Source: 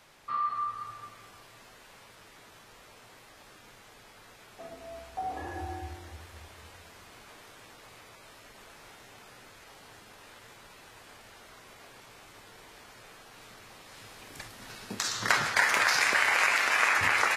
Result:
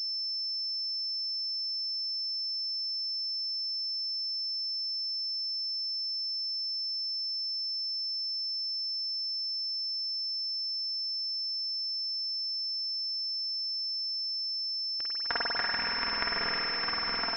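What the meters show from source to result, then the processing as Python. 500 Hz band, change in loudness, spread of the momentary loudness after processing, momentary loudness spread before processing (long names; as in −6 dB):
can't be measured, −3.5 dB, 2 LU, 22 LU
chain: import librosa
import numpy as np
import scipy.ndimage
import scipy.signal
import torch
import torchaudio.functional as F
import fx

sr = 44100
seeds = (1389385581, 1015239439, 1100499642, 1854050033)

y = fx.power_curve(x, sr, exponent=3.0)
y = y + 0.68 * np.pad(y, (int(4.3 * sr / 1000.0), 0))[:len(y)]
y = np.where(np.abs(y) >= 10.0 ** (-39.0 / 20.0), y, 0.0)
y = fx.rev_spring(y, sr, rt60_s=3.3, pass_ms=(48,), chirp_ms=20, drr_db=-6.5)
y = fx.pwm(y, sr, carrier_hz=5300.0)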